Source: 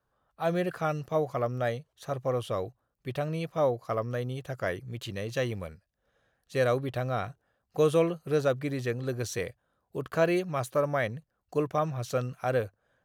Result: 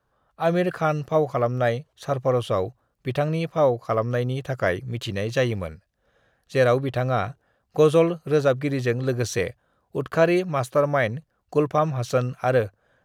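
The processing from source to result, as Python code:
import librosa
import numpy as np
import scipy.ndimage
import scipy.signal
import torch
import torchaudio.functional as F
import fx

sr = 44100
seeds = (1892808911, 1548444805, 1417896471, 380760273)

p1 = fx.rider(x, sr, range_db=3, speed_s=0.5)
p2 = x + (p1 * librosa.db_to_amplitude(-3.0))
p3 = fx.high_shelf(p2, sr, hz=9000.0, db=-8.0)
y = p3 * librosa.db_to_amplitude(2.5)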